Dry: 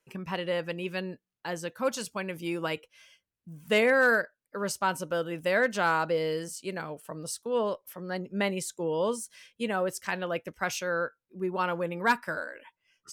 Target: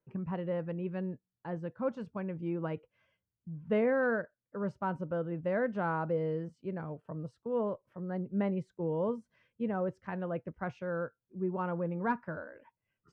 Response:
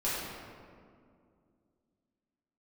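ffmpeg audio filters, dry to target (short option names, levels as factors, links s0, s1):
-af "lowpass=1200,equalizer=f=110:w=0.66:g=12,volume=0.501"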